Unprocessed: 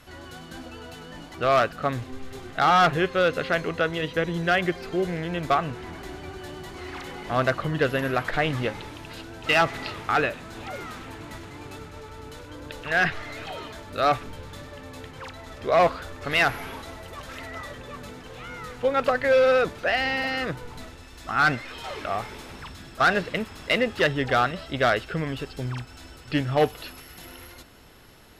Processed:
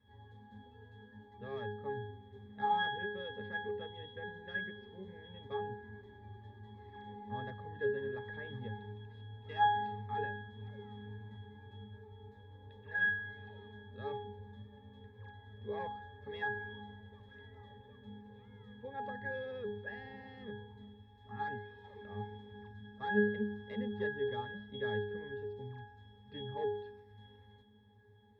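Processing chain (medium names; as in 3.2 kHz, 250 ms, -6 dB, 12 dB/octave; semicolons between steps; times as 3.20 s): pitch-class resonator G#, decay 0.67 s; trim +7 dB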